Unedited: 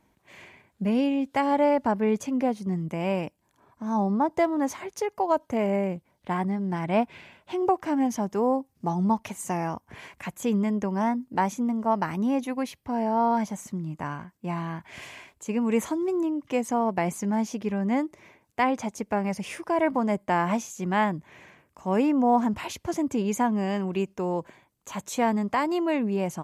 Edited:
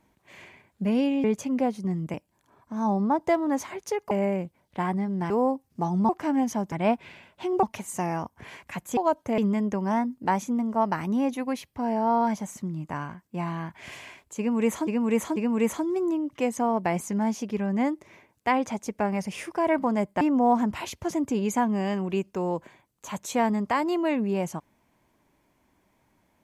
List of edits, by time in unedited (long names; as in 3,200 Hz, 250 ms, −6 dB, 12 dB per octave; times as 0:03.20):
0:01.24–0:02.06: remove
0:02.96–0:03.24: remove
0:05.21–0:05.62: move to 0:10.48
0:06.81–0:07.72: swap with 0:08.35–0:09.14
0:15.48–0:15.97: repeat, 3 plays
0:20.33–0:22.04: remove